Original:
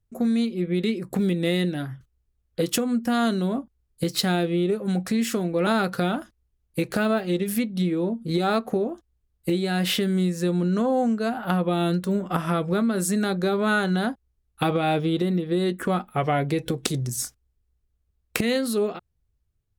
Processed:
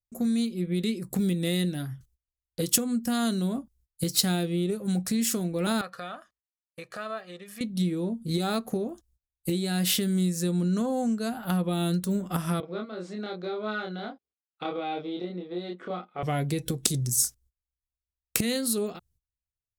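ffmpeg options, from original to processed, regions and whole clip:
-filter_complex "[0:a]asettb=1/sr,asplit=3[a][b][c];[a]atrim=end=5.814[d];[b]atrim=start=5.81:end=7.61,asetpts=PTS-STARTPTS,afade=t=in:d=0.004:c=qsin,afade=t=out:st=1.796:d=0.004:c=qsin,bandpass=f=1.3k:t=q:w=1.2,aecho=1:1:1.7:0.46,atrim=end_sample=79380[e];[c]atrim=start=7.606[f];[d][e]acrossfade=d=0.004:c1=hsin:c2=qsin[g];[g][f]acrossfade=d=0.004:c1=qsin:c2=hsin,asettb=1/sr,asplit=3[h][i][j];[h]atrim=end=12.604[k];[i]atrim=start=12.6:end=16.23,asetpts=PTS-STARTPTS,afade=t=in:d=0.004:c=qsin,afade=t=out:st=3.626:d=0.004:c=qsin,aeval=exprs='if(lt(val(0),0),0.708*val(0),val(0))':c=same,highpass=420,equalizer=f=940:t=q:w=4:g=-7,equalizer=f=1.7k:t=q:w=4:g=-10,equalizer=f=2.8k:t=q:w=4:g=-7,lowpass=f=3.2k:w=0.5412,lowpass=f=3.2k:w=1.3066,asplit=2[l][m];[m]adelay=28,volume=-2dB[n];[l][n]amix=inputs=2:normalize=0,atrim=end_sample=160083[o];[j]atrim=start=16.226[p];[k][o]acrossfade=d=0.004:c1=hsin:c2=qsin[q];[q][p]acrossfade=d=0.004:c1=qsin:c2=hsin,agate=range=-22dB:threshold=-58dB:ratio=16:detection=peak,bass=f=250:g=7,treble=f=4k:g=14,volume=-7.5dB"

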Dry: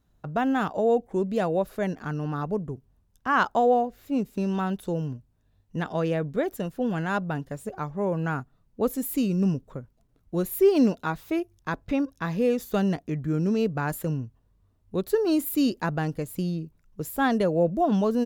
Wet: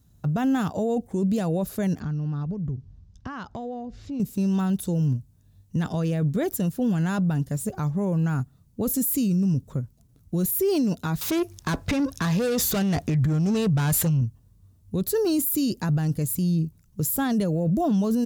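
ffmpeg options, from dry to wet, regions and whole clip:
-filter_complex "[0:a]asettb=1/sr,asplit=3[a][b][c];[a]atrim=end=2.004[d];[b]atrim=start=2:end=4.2,asetpts=PTS-STARTPTS,afade=t=in:d=0.004:c=qsin,afade=t=out:st=2.196:d=0.004:c=qsin,lowpass=f=5.6k:w=0.5412,lowpass=f=5.6k:w=1.3066,lowshelf=f=130:g=10.5,acompressor=threshold=-37dB:ratio=4:attack=3.2:release=140:knee=1:detection=peak[e];[c]atrim=start=4.196[f];[d][e]acrossfade=d=0.004:c1=hsin:c2=qsin[g];[g][f]acrossfade=d=0.004:c1=qsin:c2=hsin,asettb=1/sr,asplit=3[h][i][j];[h]atrim=end=11.214[k];[i]atrim=start=11.21:end=14.21,asetpts=PTS-STARTPTS,afade=t=in:d=0.004:c=qsin,afade=t=out:st=2.996:d=0.004:c=qsin,asubboost=boost=9.5:cutoff=100,asplit=2[l][m];[m]highpass=f=720:p=1,volume=25dB,asoftclip=type=tanh:threshold=-13.5dB[n];[l][n]amix=inputs=2:normalize=0,lowpass=f=2.8k:p=1,volume=-6dB[o];[j]atrim=start=14.206[p];[k][o]acrossfade=d=0.004:c1=hsin:c2=qsin[q];[q][p]acrossfade=d=0.004:c1=qsin:c2=hsin,highpass=70,bass=f=250:g=14,treble=f=4k:g=14,alimiter=limit=-17dB:level=0:latency=1:release=10"

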